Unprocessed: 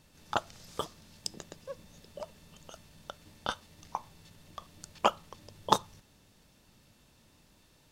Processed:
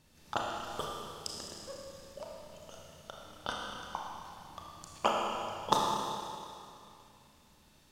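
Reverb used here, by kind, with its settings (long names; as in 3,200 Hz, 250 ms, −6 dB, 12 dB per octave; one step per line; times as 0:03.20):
four-comb reverb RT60 2.5 s, combs from 26 ms, DRR −2 dB
level −4 dB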